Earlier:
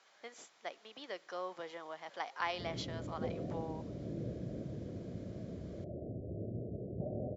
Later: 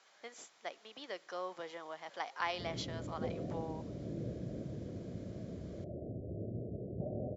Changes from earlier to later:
speech: remove distance through air 85 m; master: add distance through air 54 m

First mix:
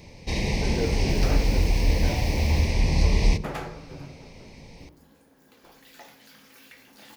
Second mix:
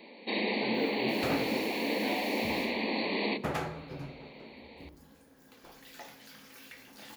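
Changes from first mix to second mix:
speech -6.5 dB; first sound: add brick-wall FIR band-pass 200–4600 Hz

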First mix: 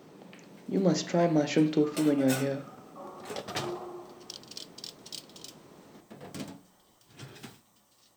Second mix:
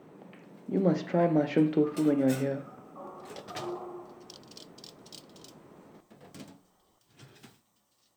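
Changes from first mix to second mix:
speech: add low-pass 2.2 kHz 12 dB/octave; first sound -7.0 dB

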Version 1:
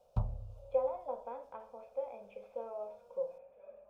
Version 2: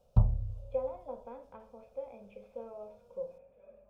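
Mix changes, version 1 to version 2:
speech: add peaking EQ 730 Hz -8.5 dB 1.9 oct; master: add bass shelf 500 Hz +10 dB

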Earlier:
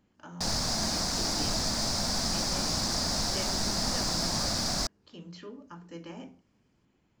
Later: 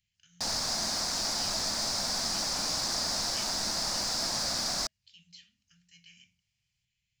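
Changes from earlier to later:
speech: add inverse Chebyshev band-stop 290–1100 Hz, stop band 50 dB; master: add bass shelf 360 Hz -11.5 dB

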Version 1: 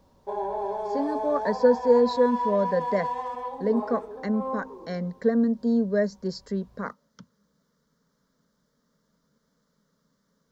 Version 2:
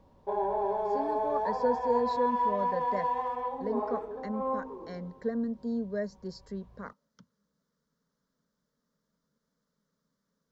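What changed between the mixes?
speech -9.5 dB; background: add tone controls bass +1 dB, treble -12 dB

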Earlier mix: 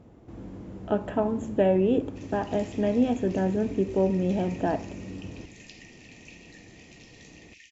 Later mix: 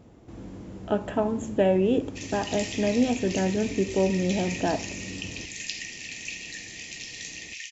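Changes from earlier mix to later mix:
background +9.5 dB; master: add treble shelf 3 kHz +9.5 dB

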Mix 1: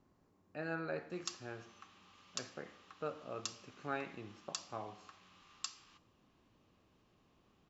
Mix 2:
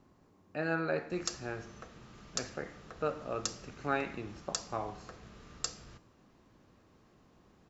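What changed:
speech +7.5 dB; background: remove rippled Chebyshev high-pass 770 Hz, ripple 9 dB

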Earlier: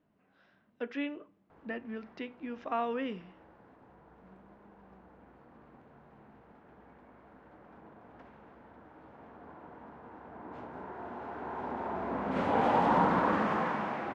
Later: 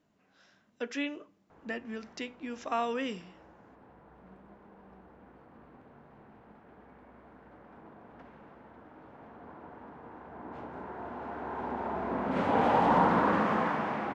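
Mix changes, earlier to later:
speech: remove distance through air 340 m; reverb: on, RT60 1.2 s

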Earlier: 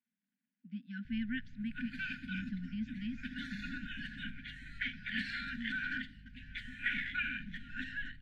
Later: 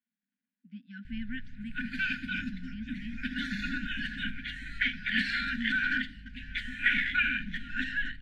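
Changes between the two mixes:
background +9.0 dB; master: add peaking EQ 120 Hz -8.5 dB 0.91 oct

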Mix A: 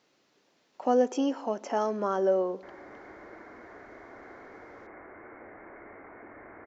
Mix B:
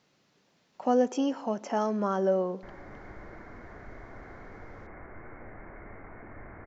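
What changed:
background: remove high-pass 150 Hz 6 dB/octave; master: add resonant low shelf 230 Hz +7 dB, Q 1.5

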